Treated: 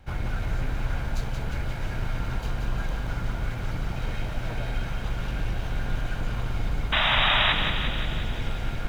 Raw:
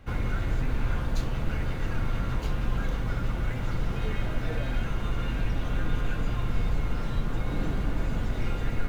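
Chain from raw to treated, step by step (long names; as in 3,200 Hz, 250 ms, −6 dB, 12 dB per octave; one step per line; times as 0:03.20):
lower of the sound and its delayed copy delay 1.3 ms
sound drawn into the spectrogram noise, 0:06.92–0:07.53, 560–3,900 Hz −23 dBFS
feedback echo with a high-pass in the loop 177 ms, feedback 68%, high-pass 550 Hz, level −6 dB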